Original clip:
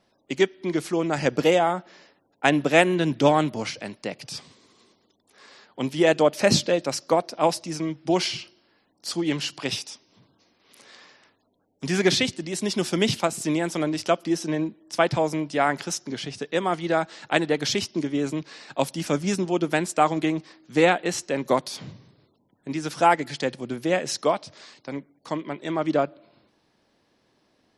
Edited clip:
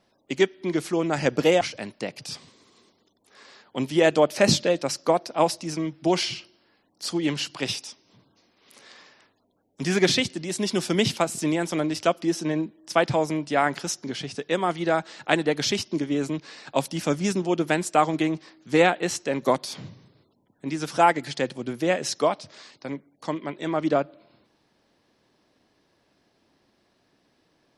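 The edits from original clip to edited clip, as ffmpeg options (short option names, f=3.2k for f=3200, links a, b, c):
-filter_complex "[0:a]asplit=2[a][b];[a]atrim=end=1.612[c];[b]atrim=start=3.638[d];[c][d]acrossfade=d=0.004:c1=hsin:c2=hsin"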